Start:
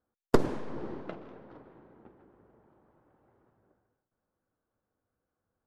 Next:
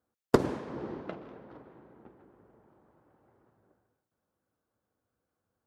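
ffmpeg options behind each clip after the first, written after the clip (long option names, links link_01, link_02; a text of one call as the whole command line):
ffmpeg -i in.wav -af "highpass=57,volume=1dB" out.wav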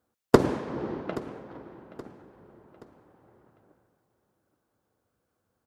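ffmpeg -i in.wav -af "aecho=1:1:825|1650|2475:0.126|0.0504|0.0201,volume=5.5dB" out.wav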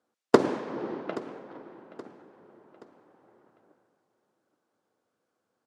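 ffmpeg -i in.wav -af "highpass=230,lowpass=7800" out.wav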